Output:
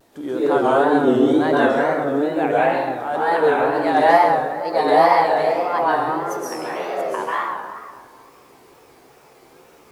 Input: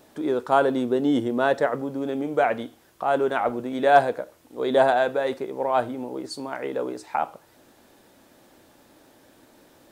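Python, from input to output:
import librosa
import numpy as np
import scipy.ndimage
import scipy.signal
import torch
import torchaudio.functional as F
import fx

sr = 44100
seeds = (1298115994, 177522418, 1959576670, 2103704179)

y = fx.pitch_glide(x, sr, semitones=6.5, runs='starting unshifted')
y = fx.rev_plate(y, sr, seeds[0], rt60_s=1.8, hf_ratio=0.6, predelay_ms=115, drr_db=-8.5)
y = fx.wow_flutter(y, sr, seeds[1], rate_hz=2.1, depth_cents=120.0)
y = y * 10.0 ** (-2.5 / 20.0)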